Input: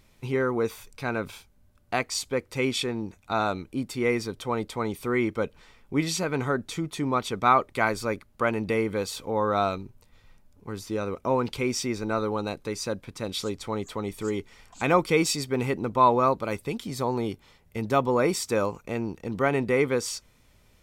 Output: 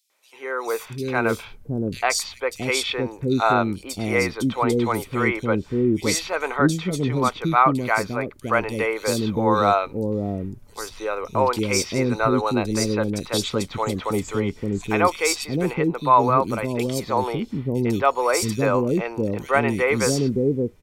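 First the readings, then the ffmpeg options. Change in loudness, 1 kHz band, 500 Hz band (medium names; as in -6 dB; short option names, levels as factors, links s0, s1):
+5.0 dB, +5.5 dB, +4.0 dB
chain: -filter_complex "[0:a]dynaudnorm=f=120:g=9:m=3.76,acrossover=split=440|3600[s0][s1][s2];[s1]adelay=100[s3];[s0]adelay=670[s4];[s4][s3][s2]amix=inputs=3:normalize=0,volume=0.794"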